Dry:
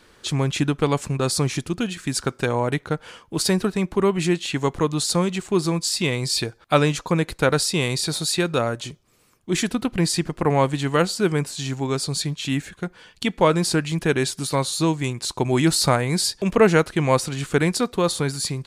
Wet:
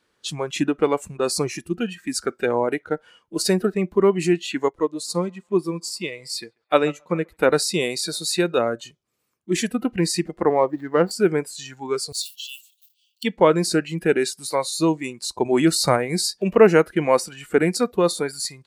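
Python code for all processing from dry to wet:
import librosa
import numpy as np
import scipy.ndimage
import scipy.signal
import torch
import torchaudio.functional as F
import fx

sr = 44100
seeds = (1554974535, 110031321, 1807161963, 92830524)

y = fx.chain(x, sr, fx.echo_banded(ms=137, feedback_pct=66, hz=1100.0, wet_db=-14.0),
    fx.upward_expand(threshold_db=-37.0, expansion=1.5), at=(4.68, 7.37))
y = fx.chain(y, sr, fx.median_filter(points=15),
    fx.high_shelf(hz=3900.0, db=-9.5), at=(10.49, 11.11))
y = fx.chain(y, sr, fx.block_float(bits=5),
    fx.steep_highpass(hz=2700.0, slope=96),
    fx.sustainer(db_per_s=150.0), at=(12.12, 13.24))
y = fx.noise_reduce_blind(y, sr, reduce_db=14)
y = fx.highpass(y, sr, hz=120.0, slope=6)
y = fx.dynamic_eq(y, sr, hz=410.0, q=0.91, threshold_db=-30.0, ratio=4.0, max_db=5)
y = y * 10.0 ** (-1.0 / 20.0)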